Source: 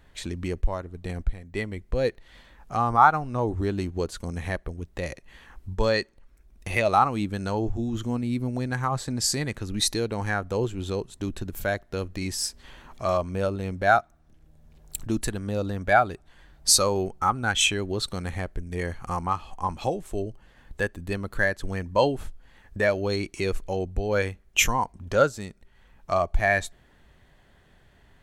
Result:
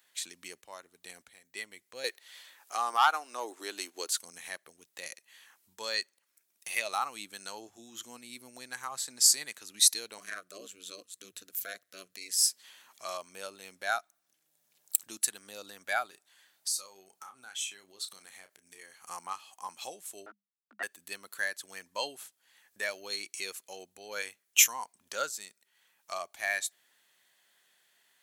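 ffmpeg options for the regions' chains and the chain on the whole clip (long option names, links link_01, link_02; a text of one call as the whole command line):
ffmpeg -i in.wav -filter_complex "[0:a]asettb=1/sr,asplit=3[link_01][link_02][link_03];[link_01]atrim=end=2.044[link_04];[link_02]atrim=start=2.04:end=4.21,asetpts=PTS-STARTPTS,afade=type=in:duration=0.004:curve=qsin,afade=type=out:start_time=2.166:duration=0.004:curve=qsin,highpass=frequency=280:width=0.5412,highpass=frequency=280:width=1.3066,acontrast=61[link_05];[link_03]atrim=start=4.206[link_06];[link_04][link_05]acrossfade=duration=0.004:curve1=hsin:curve2=qsin[link_07];[link_07][link_06]acrossfade=duration=0.004:curve1=qsin:curve2=hsin,asettb=1/sr,asplit=3[link_08][link_09][link_10];[link_08]atrim=end=10.184[link_11];[link_09]atrim=start=10.18:end=12.37,asetpts=PTS-STARTPTS,afade=type=in:duration=0.004:curve=qsin,afade=type=out:start_time=2.186:duration=0.004:curve=qsin,aeval=exprs='val(0)*sin(2*PI*93*n/s)':channel_layout=same,asuperstop=centerf=870:order=12:qfactor=3[link_12];[link_10]atrim=start=12.366[link_13];[link_11][link_12]acrossfade=duration=0.004:curve1=hsin:curve2=qsin[link_14];[link_14][link_13]acrossfade=duration=0.004:curve1=qsin:curve2=hsin,asettb=1/sr,asplit=3[link_15][link_16][link_17];[link_15]atrim=end=16.064[link_18];[link_16]atrim=start=16.06:end=19.09,asetpts=PTS-STARTPTS,afade=type=in:duration=0.004:curve=qsin,afade=type=out:start_time=3.026:duration=0.004:curve=qsin,acompressor=threshold=-33dB:ratio=8:attack=3.2:release=140:knee=1:detection=peak,asplit=2[link_19][link_20];[link_20]adelay=31,volume=-9.5dB[link_21];[link_19][link_21]amix=inputs=2:normalize=0,atrim=end_sample=133623[link_22];[link_17]atrim=start=19.086[link_23];[link_18][link_22]acrossfade=duration=0.004:curve1=hsin:curve2=qsin[link_24];[link_24][link_23]acrossfade=duration=0.004:curve1=qsin:curve2=hsin,asettb=1/sr,asplit=3[link_25][link_26][link_27];[link_25]atrim=end=20.264[link_28];[link_26]atrim=start=20.26:end=20.83,asetpts=PTS-STARTPTS,afade=type=in:duration=0.004:curve=qsin,afade=type=out:start_time=0.566:duration=0.004:curve=qsin,aeval=exprs='val(0)*gte(abs(val(0)),0.0119)':channel_layout=same,lowpass=frequency=1200:width_type=q:width=9.3,afreqshift=200[link_29];[link_27]atrim=start=20.826[link_30];[link_28][link_29]acrossfade=duration=0.004:curve1=hsin:curve2=qsin[link_31];[link_31][link_30]acrossfade=duration=0.004:curve1=qsin:curve2=hsin,highpass=170,aderivative,volume=4.5dB" out.wav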